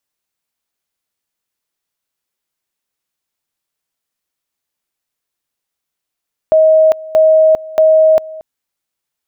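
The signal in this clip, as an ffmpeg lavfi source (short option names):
-f lavfi -i "aevalsrc='pow(10,(-5-20.5*gte(mod(t,0.63),0.4))/20)*sin(2*PI*632*t)':d=1.89:s=44100"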